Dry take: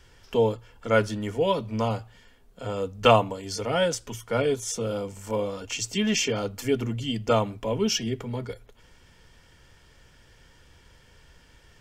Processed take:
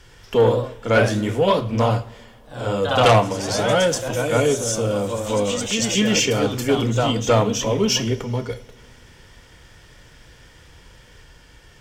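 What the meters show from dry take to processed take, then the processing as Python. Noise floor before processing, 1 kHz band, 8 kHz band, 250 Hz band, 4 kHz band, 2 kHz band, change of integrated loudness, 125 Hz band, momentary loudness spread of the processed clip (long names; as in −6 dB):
−57 dBFS, +6.0 dB, +8.0 dB, +6.5 dB, +7.0 dB, +7.5 dB, +6.5 dB, +8.5 dB, 8 LU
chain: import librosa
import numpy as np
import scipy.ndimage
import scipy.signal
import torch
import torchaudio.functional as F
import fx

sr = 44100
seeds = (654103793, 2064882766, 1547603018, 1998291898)

y = fx.echo_pitch(x, sr, ms=93, semitones=1, count=3, db_per_echo=-6.0)
y = fx.cheby_harmonics(y, sr, harmonics=(5,), levels_db=(-13,), full_scale_db=-5.0)
y = fx.rev_double_slope(y, sr, seeds[0], early_s=0.44, late_s=2.4, knee_db=-17, drr_db=10.0)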